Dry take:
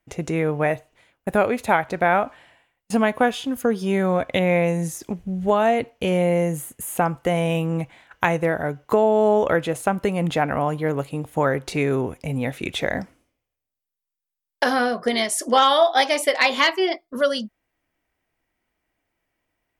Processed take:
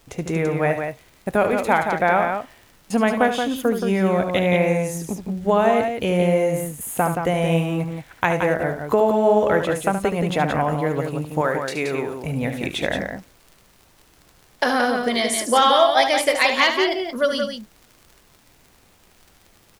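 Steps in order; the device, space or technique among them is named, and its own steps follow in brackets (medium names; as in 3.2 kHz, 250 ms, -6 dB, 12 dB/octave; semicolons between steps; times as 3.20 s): vinyl LP (wow and flutter 9.6 cents; crackle 47 per s -36 dBFS; pink noise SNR 34 dB); 11.41–12.24 s: high-pass 410 Hz 6 dB/octave; loudspeakers at several distances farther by 25 m -9 dB, 60 m -6 dB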